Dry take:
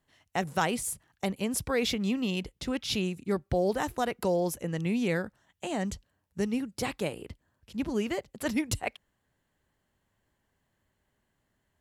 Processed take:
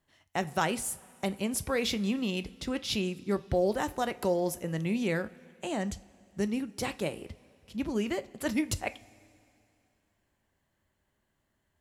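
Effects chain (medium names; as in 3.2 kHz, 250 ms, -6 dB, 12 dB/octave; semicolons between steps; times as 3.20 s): two-slope reverb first 0.28 s, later 2.7 s, from -18 dB, DRR 12 dB; trim -1 dB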